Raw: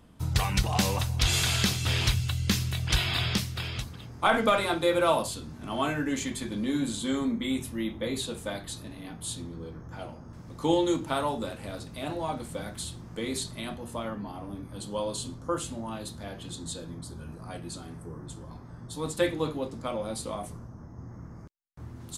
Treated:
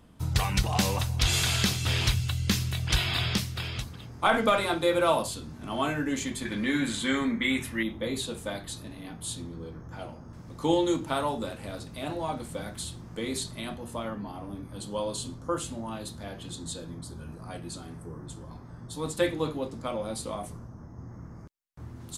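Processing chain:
0:06.45–0:07.83: parametric band 1,900 Hz +14 dB 1.1 octaves

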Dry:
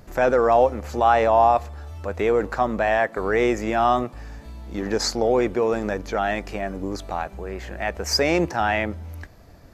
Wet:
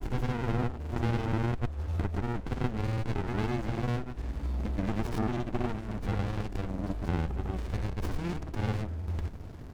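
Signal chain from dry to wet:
downward compressor 3 to 1, threshold −35 dBFS, peak gain reduction 16.5 dB
granular cloud
windowed peak hold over 65 samples
level +8 dB

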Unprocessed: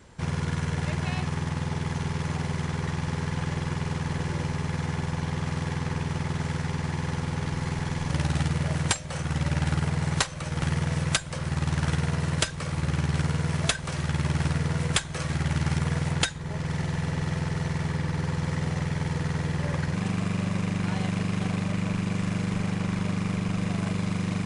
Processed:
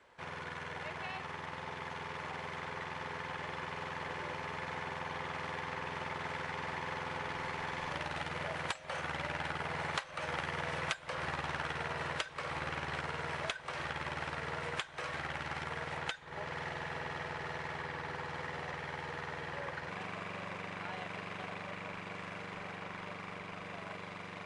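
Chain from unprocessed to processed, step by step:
source passing by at 0:10.87, 8 m/s, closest 8 metres
three-way crossover with the lows and the highs turned down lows −20 dB, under 430 Hz, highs −16 dB, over 3,600 Hz
downward compressor 6 to 1, threshold −52 dBFS, peak gain reduction 25.5 dB
level +16 dB

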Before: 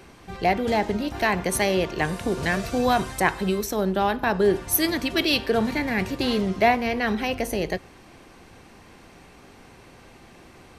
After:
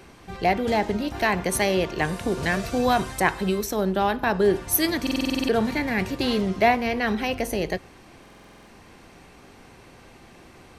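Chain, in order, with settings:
buffer that repeats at 0:05.02/0:08.21, samples 2,048, times 9

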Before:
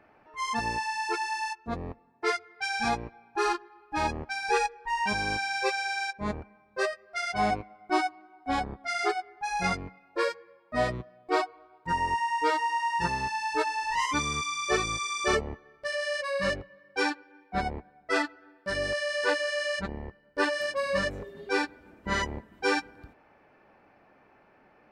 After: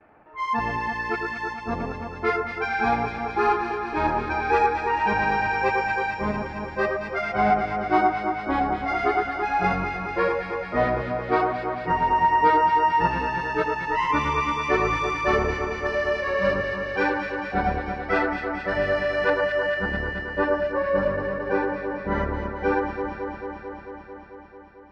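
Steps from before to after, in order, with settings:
low-pass filter 2,200 Hz 12 dB per octave, from 0:19.30 1,200 Hz
noise gate with hold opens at −51 dBFS
delay that swaps between a low-pass and a high-pass 111 ms, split 1,600 Hz, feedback 87%, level −4 dB
level +4.5 dB

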